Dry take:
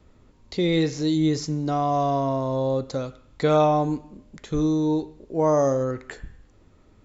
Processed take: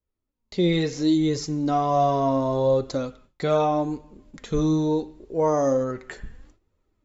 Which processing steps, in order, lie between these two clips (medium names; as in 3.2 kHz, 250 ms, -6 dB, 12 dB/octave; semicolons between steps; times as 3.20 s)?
gate with hold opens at -41 dBFS; level rider gain up to 15.5 dB; flange 0.74 Hz, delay 1.8 ms, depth 3.9 ms, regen +41%; trim -6.5 dB